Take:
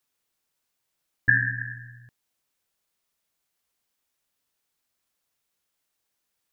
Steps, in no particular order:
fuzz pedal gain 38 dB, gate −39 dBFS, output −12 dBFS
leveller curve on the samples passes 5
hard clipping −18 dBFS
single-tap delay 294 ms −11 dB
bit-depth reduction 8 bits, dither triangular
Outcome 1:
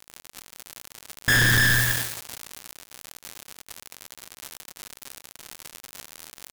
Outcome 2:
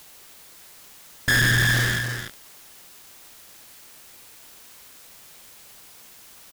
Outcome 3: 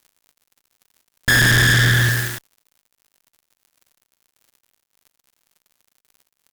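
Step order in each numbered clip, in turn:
bit-depth reduction, then single-tap delay, then fuzz pedal, then leveller curve on the samples, then hard clipping
leveller curve on the samples, then fuzz pedal, then bit-depth reduction, then single-tap delay, then hard clipping
hard clipping, then leveller curve on the samples, then single-tap delay, then bit-depth reduction, then fuzz pedal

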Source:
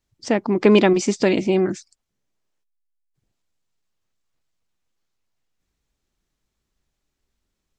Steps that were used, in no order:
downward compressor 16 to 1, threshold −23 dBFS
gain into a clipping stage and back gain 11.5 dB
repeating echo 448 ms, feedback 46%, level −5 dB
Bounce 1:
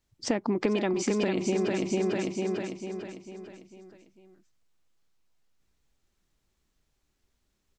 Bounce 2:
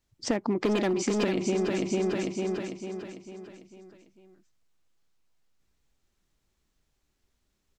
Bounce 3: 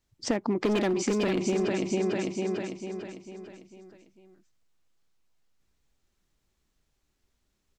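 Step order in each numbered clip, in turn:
repeating echo, then downward compressor, then gain into a clipping stage and back
gain into a clipping stage and back, then repeating echo, then downward compressor
repeating echo, then gain into a clipping stage and back, then downward compressor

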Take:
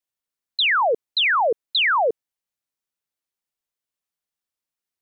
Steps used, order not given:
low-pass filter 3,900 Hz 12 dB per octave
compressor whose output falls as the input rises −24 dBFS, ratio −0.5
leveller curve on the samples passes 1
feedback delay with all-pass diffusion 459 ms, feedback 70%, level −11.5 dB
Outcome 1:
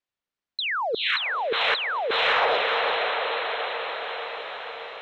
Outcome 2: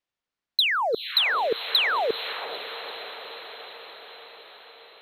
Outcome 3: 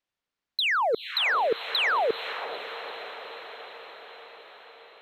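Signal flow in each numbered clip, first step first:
feedback delay with all-pass diffusion, then compressor whose output falls as the input rises, then leveller curve on the samples, then low-pass filter
low-pass filter, then compressor whose output falls as the input rises, then leveller curve on the samples, then feedback delay with all-pass diffusion
compressor whose output falls as the input rises, then low-pass filter, then leveller curve on the samples, then feedback delay with all-pass diffusion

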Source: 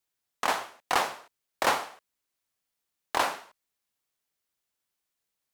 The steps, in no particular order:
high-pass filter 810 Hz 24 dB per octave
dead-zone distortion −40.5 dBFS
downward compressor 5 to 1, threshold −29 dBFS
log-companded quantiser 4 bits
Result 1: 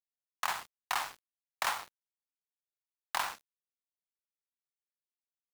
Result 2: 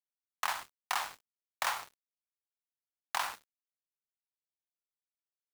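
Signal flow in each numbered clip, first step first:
high-pass filter, then dead-zone distortion, then downward compressor, then log-companded quantiser
log-companded quantiser, then high-pass filter, then dead-zone distortion, then downward compressor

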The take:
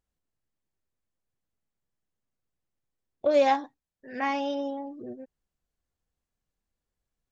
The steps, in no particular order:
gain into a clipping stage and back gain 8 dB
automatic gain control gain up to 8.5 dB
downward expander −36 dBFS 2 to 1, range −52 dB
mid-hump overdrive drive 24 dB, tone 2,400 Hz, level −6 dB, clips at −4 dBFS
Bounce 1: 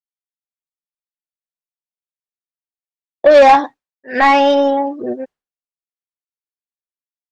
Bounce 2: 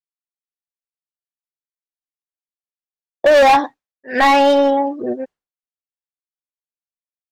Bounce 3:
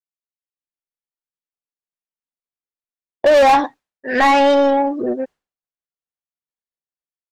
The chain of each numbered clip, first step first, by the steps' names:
downward expander, then mid-hump overdrive, then gain into a clipping stage and back, then automatic gain control
downward expander, then mid-hump overdrive, then automatic gain control, then gain into a clipping stage and back
automatic gain control, then downward expander, then mid-hump overdrive, then gain into a clipping stage and back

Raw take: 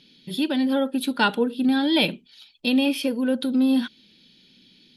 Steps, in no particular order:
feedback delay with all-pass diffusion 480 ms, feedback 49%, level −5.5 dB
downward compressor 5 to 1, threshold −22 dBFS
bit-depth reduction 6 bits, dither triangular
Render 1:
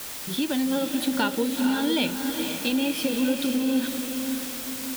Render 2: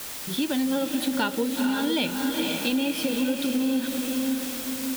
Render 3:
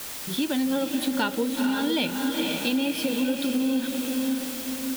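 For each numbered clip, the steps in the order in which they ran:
bit-depth reduction, then downward compressor, then feedback delay with all-pass diffusion
bit-depth reduction, then feedback delay with all-pass diffusion, then downward compressor
feedback delay with all-pass diffusion, then bit-depth reduction, then downward compressor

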